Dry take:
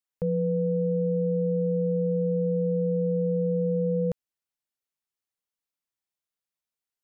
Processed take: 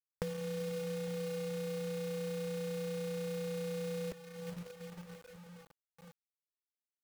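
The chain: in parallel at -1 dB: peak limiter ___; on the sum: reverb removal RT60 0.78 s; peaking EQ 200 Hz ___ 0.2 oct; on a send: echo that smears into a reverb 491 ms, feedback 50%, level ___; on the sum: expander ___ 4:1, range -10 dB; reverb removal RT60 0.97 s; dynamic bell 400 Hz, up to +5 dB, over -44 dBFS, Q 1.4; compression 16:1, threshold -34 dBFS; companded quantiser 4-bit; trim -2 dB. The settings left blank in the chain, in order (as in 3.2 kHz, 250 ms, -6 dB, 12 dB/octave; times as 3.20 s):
-31 dBFS, +7 dB, -10.5 dB, -53 dBFS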